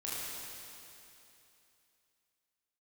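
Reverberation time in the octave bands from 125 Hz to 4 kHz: 2.9, 2.9, 2.9, 2.9, 2.9, 2.9 seconds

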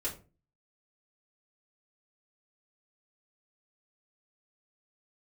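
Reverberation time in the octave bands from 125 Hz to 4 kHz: 0.55, 0.45, 0.40, 0.30, 0.25, 0.20 seconds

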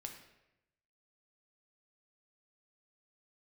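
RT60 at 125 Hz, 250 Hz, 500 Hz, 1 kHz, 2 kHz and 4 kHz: 1.1, 0.95, 0.95, 0.85, 0.90, 0.70 seconds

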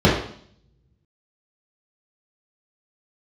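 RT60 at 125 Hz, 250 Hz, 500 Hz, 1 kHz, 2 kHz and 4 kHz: 1.0, 0.75, 0.60, 0.55, 0.55, 0.65 seconds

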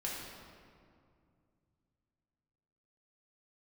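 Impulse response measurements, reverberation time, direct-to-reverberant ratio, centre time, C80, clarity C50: 2.3 s, −5.0 dB, 103 ms, 1.5 dB, 0.0 dB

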